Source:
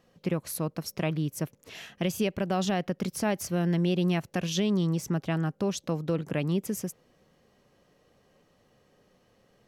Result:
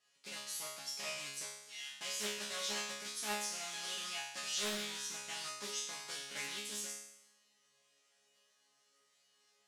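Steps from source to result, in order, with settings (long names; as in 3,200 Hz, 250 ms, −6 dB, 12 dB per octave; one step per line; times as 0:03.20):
one scale factor per block 3 bits
meter weighting curve ITU-R 468
in parallel at +0.5 dB: brickwall limiter −17 dBFS, peak gain reduction 7 dB
on the sum: resonators tuned to a chord C#3 fifth, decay 0.82 s
highs frequency-modulated by the lows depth 0.58 ms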